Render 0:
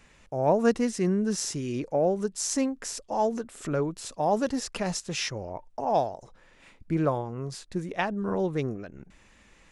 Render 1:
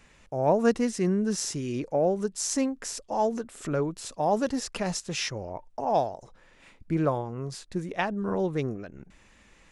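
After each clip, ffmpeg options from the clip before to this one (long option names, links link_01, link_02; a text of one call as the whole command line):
ffmpeg -i in.wav -af anull out.wav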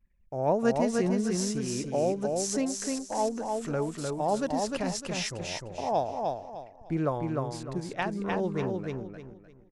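ffmpeg -i in.wav -filter_complex "[0:a]anlmdn=0.00631,asplit=2[link_01][link_02];[link_02]aecho=0:1:303|606|909|1212:0.668|0.194|0.0562|0.0163[link_03];[link_01][link_03]amix=inputs=2:normalize=0,volume=-3dB" out.wav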